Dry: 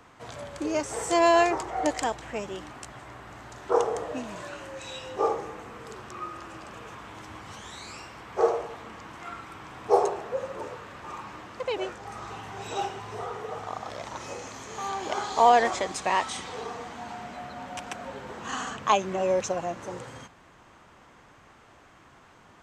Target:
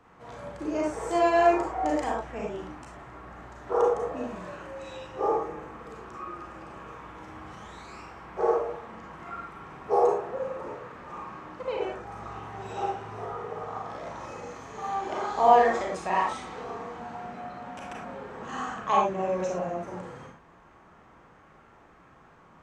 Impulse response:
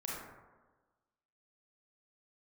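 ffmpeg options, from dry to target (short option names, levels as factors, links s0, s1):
-filter_complex "[0:a]highshelf=f=2500:g=-9.5[s0];[1:a]atrim=start_sample=2205,afade=t=out:st=0.17:d=0.01,atrim=end_sample=7938[s1];[s0][s1]afir=irnorm=-1:irlink=0"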